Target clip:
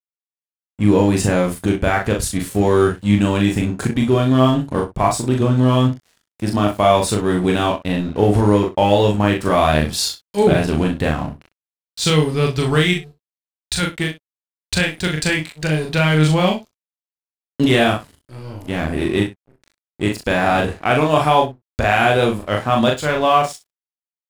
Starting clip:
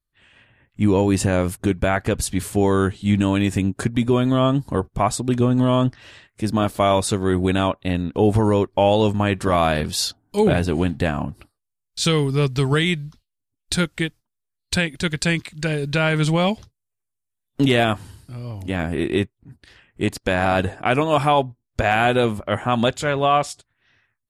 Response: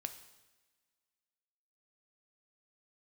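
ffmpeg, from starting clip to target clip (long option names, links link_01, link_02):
-filter_complex "[0:a]asettb=1/sr,asplit=3[link_01][link_02][link_03];[link_01]atrim=end=12.934[link_04];[link_02]atrim=start=12.93:end=13.83,asetpts=PTS-STARTPTS,afade=type=in:duration=0.004:curve=qsin,afade=type=out:start_time=0.896:duration=0.004:curve=qsin,equalizer=frequency=290:width=0.98:gain=-10.5[link_05];[link_03]atrim=start=13.826[link_06];[link_04][link_05]acrossfade=duration=0.004:curve1=hsin:curve2=qsin[link_07];[link_07][link_06]acrossfade=duration=0.004:curve1=qsin:curve2=hsin,aeval=exprs='sgn(val(0))*max(abs(val(0))-0.0126,0)':channel_layout=same,asplit=2[link_08][link_09];[link_09]adelay=39,volume=-3dB[link_10];[link_08][link_10]amix=inputs=2:normalize=0,asplit=2[link_11][link_12];[link_12]aecho=0:1:26|62:0.316|0.158[link_13];[link_11][link_13]amix=inputs=2:normalize=0,volume=1.5dB"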